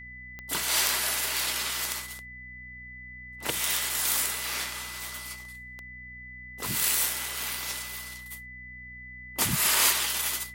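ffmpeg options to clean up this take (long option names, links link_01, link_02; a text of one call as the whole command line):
ffmpeg -i in.wav -af "adeclick=threshold=4,bandreject=frequency=61.8:width_type=h:width=4,bandreject=frequency=123.6:width_type=h:width=4,bandreject=frequency=185.4:width_type=h:width=4,bandreject=frequency=247.2:width_type=h:width=4,bandreject=frequency=2000:width=30" out.wav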